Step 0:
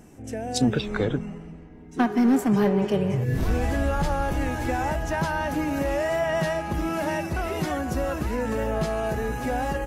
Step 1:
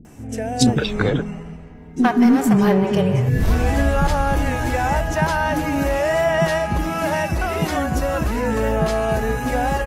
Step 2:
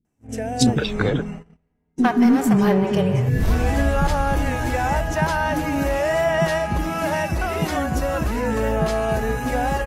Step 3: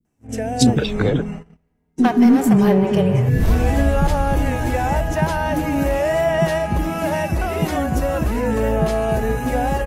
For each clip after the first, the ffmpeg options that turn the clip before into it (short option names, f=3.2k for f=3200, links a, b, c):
-filter_complex "[0:a]acrossover=split=360[a][b];[b]adelay=50[c];[a][c]amix=inputs=2:normalize=0,volume=7dB"
-af "agate=range=-29dB:threshold=-30dB:ratio=16:detection=peak,volume=-1.5dB"
-filter_complex "[0:a]adynamicequalizer=threshold=0.00631:dfrequency=5000:dqfactor=0.86:tfrequency=5000:tqfactor=0.86:attack=5:release=100:ratio=0.375:range=2.5:mode=cutabove:tftype=bell,acrossover=split=370|1000|1800[a][b][c][d];[c]acompressor=threshold=-44dB:ratio=6[e];[a][b][e][d]amix=inputs=4:normalize=0,volume=3dB"